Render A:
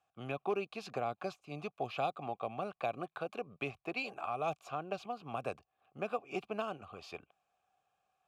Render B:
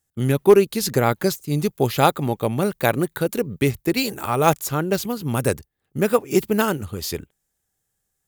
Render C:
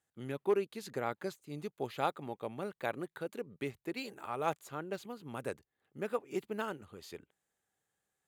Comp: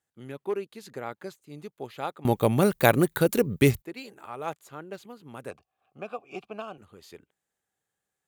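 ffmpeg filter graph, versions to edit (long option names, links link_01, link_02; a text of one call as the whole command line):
ffmpeg -i take0.wav -i take1.wav -i take2.wav -filter_complex "[2:a]asplit=3[link_01][link_02][link_03];[link_01]atrim=end=2.252[link_04];[1:a]atrim=start=2.248:end=3.822[link_05];[link_02]atrim=start=3.818:end=5.512[link_06];[0:a]atrim=start=5.508:end=6.782[link_07];[link_03]atrim=start=6.778[link_08];[link_04][link_05]acrossfade=duration=0.004:curve1=hsin:curve2=hsin[link_09];[link_09][link_06]acrossfade=duration=0.004:curve1=hsin:curve2=hsin[link_10];[link_10][link_07]acrossfade=duration=0.004:curve1=hsin:curve2=hsin[link_11];[link_11][link_08]acrossfade=duration=0.004:curve1=hsin:curve2=hsin" out.wav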